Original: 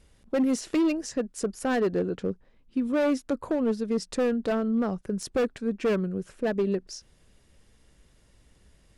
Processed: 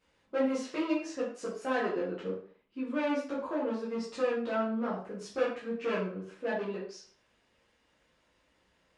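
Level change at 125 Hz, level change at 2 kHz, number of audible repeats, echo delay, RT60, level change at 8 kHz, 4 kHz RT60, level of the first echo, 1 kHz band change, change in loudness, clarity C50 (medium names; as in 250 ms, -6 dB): no reading, -1.5 dB, no echo, no echo, 0.45 s, -11.5 dB, 0.40 s, no echo, -1.0 dB, -6.0 dB, 4.5 dB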